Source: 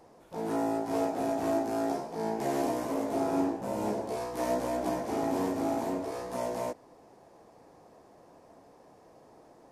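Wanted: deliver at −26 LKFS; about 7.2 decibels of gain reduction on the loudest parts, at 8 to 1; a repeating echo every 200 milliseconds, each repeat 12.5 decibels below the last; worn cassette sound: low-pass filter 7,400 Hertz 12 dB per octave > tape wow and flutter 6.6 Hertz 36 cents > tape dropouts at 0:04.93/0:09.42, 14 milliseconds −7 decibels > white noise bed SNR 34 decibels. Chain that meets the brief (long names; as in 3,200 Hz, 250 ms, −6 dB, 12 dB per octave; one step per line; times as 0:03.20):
downward compressor 8 to 1, threshold −32 dBFS
low-pass filter 7,400 Hz 12 dB per octave
repeating echo 200 ms, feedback 24%, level −12.5 dB
tape wow and flutter 6.6 Hz 36 cents
tape dropouts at 0:04.93/0:09.42, 14 ms −7 dB
white noise bed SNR 34 dB
level +10.5 dB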